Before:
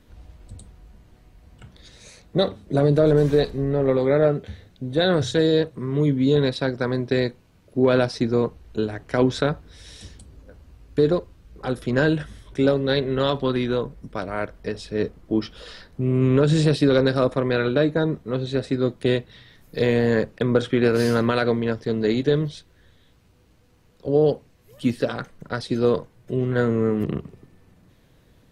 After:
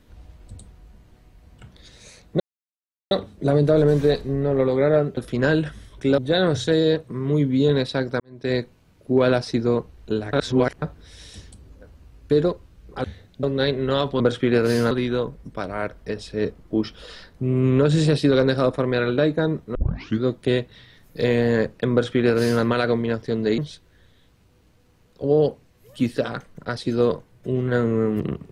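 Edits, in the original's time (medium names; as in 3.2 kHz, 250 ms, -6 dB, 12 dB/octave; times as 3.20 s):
2.40 s: insert silence 0.71 s
4.46–4.85 s: swap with 11.71–12.72 s
6.87–7.21 s: fade in quadratic
9.00–9.49 s: reverse
18.33 s: tape start 0.48 s
20.50–21.21 s: copy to 13.49 s
22.16–22.42 s: delete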